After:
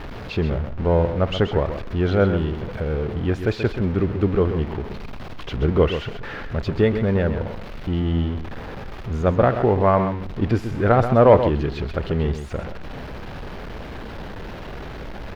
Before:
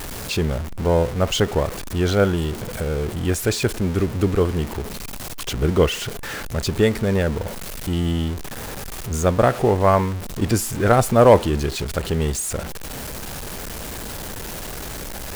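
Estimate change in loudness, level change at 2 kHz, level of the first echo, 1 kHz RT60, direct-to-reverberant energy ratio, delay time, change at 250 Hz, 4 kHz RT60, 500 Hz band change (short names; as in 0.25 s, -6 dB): +0.5 dB, -2.5 dB, -9.5 dB, none, none, 0.131 s, 0.0 dB, none, -0.5 dB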